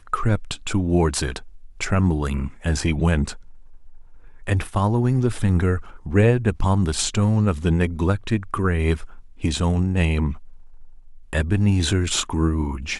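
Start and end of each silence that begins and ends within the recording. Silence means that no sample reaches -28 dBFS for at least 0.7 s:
3.33–4.47 s
10.34–11.33 s

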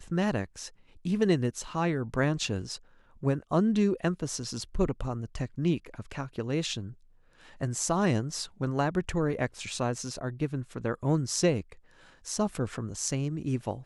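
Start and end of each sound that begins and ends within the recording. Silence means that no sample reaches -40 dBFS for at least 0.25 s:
1.05–2.76 s
3.23–6.93 s
7.61–11.73 s

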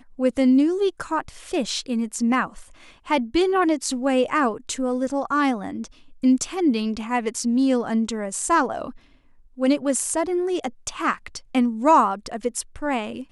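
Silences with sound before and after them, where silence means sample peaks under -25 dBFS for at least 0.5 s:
2.45–3.10 s
8.89–9.60 s

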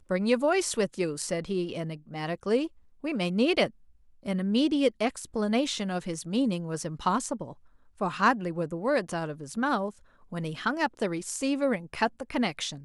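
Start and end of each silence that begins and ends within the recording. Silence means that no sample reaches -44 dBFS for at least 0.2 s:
2.67–3.04 s
3.70–4.23 s
7.53–7.99 s
9.91–10.32 s

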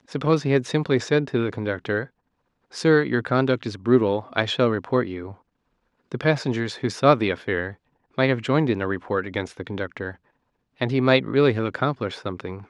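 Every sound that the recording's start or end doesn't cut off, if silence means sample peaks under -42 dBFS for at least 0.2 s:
2.72–5.34 s
6.12–7.74 s
8.18–10.16 s

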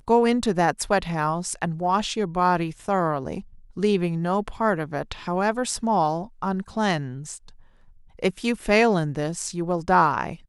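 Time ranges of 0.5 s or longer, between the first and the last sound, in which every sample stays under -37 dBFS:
7.49–8.19 s

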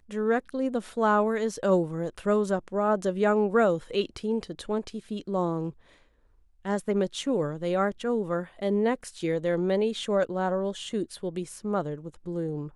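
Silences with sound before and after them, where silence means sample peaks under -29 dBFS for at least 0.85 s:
5.69–6.66 s

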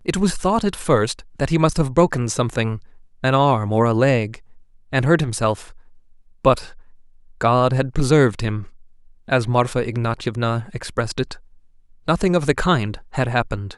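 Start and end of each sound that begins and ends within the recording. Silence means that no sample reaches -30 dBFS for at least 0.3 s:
3.23–4.36 s
4.93–5.63 s
6.45–6.67 s
7.41–8.64 s
9.28–11.34 s

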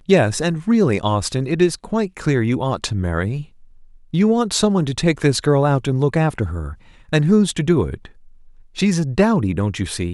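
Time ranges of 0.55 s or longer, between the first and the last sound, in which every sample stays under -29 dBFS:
3.43–4.14 s
8.06–8.77 s

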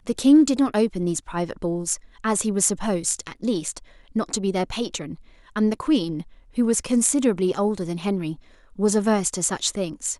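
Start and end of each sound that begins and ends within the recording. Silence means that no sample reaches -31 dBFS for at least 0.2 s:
2.24–3.78 s
4.16–5.14 s
5.56–6.22 s
6.58–8.34 s

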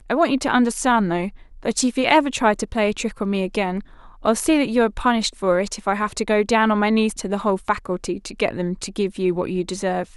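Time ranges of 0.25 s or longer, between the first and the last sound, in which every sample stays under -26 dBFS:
1.28–1.65 s
3.80–4.25 s

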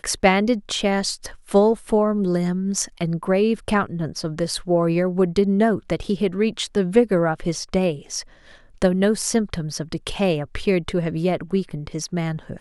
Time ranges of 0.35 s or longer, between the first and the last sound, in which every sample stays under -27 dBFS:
8.21–8.82 s

